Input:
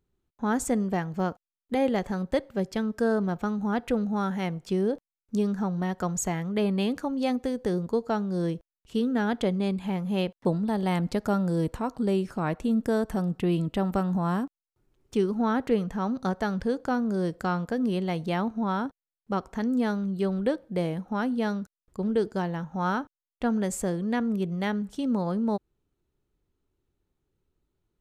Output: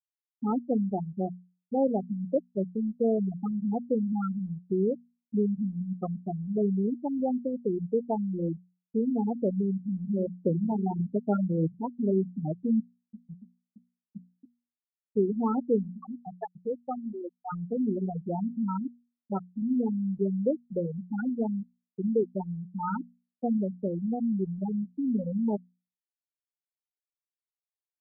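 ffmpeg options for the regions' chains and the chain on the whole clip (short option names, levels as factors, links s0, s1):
-filter_complex "[0:a]asettb=1/sr,asplit=3[s0][s1][s2];[s0]atrim=end=10.084[s3];[s1]atrim=start=10.08:end=12.24,asetpts=PTS-STARTPTS,afade=t=in:d=0.004:c=qsin,afade=t=out:st=2.156:d=0.004:c=qsin,highpass=f=84:w=0.5412,highpass=f=84:w=1.3066,aecho=1:1:73|146|219|292:0.282|0.113|0.0451|0.018,atrim=end_sample=95256[s4];[s2]atrim=start=12.236[s5];[s3][s4]acrossfade=d=0.004:c1=hsin:c2=qsin[s6];[s6][s5]acrossfade=d=0.004:c1=qsin:c2=hsin,asettb=1/sr,asplit=3[s7][s8][s9];[s7]atrim=end=12.854[s10];[s8]atrim=start=12.85:end=15.17,asetpts=PTS-STARTPTS,afade=t=in:d=0.004:c=qsin,afade=t=out:st=2.316:d=0.004:c=qsin,bandreject=f=60:t=h:w=6,bandreject=f=120:t=h:w=6,bandreject=f=180:t=h:w=6,bandreject=f=240:t=h:w=6,bandreject=f=300:t=h:w=6,bandreject=f=360:t=h:w=6,acompressor=threshold=0.0224:ratio=8:attack=3.2:release=140:knee=1:detection=peak[s11];[s9]atrim=start=15.166[s12];[s10][s11]acrossfade=d=0.004:c1=hsin:c2=qsin[s13];[s13][s12]acrossfade=d=0.004:c1=qsin:c2=hsin,asettb=1/sr,asplit=3[s14][s15][s16];[s14]atrim=end=15.904[s17];[s15]atrim=start=15.9:end=17.53,asetpts=PTS-STARTPTS,afade=t=in:d=0.004:c=qsin,afade=t=out:st=1.626:d=0.004:c=qsin,highpass=72,lowshelf=f=230:g=-12[s18];[s16]atrim=start=17.526[s19];[s17][s18]acrossfade=d=0.004:c1=hsin:c2=qsin[s20];[s20][s19]acrossfade=d=0.004:c1=qsin:c2=hsin,deesser=0.8,afftfilt=real='re*gte(hypot(re,im),0.224)':imag='im*gte(hypot(re,im),0.224)':win_size=1024:overlap=0.75,bandreject=f=60:t=h:w=6,bandreject=f=120:t=h:w=6,bandreject=f=180:t=h:w=6,bandreject=f=240:t=h:w=6"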